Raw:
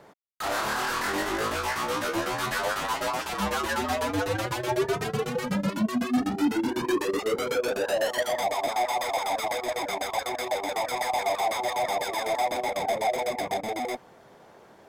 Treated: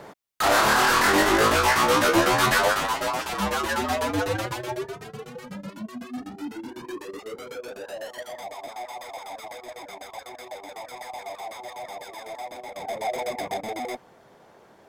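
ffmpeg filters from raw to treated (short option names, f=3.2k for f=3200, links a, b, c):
-af "volume=18dB,afade=t=out:st=2.49:d=0.45:silence=0.446684,afade=t=out:st=4.28:d=0.66:silence=0.251189,afade=t=in:st=12.68:d=0.51:silence=0.354813"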